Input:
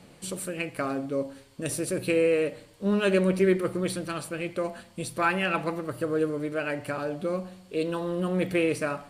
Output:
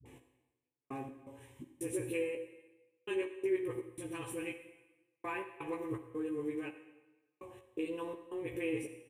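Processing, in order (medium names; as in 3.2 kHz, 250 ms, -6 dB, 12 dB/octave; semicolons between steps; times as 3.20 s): high-pass 73 Hz; peaking EQ 98 Hz +9.5 dB 2.2 oct; compression 3:1, threshold -31 dBFS, peak gain reduction 12.5 dB; static phaser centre 930 Hz, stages 8; phase dispersion highs, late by 57 ms, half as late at 380 Hz; trance gate "x....x.xx.xx" 83 bpm -60 dB; doubling 16 ms -4.5 dB; on a send: reverberation RT60 1.1 s, pre-delay 39 ms, DRR 9.5 dB; on the sum: trim -3.5 dB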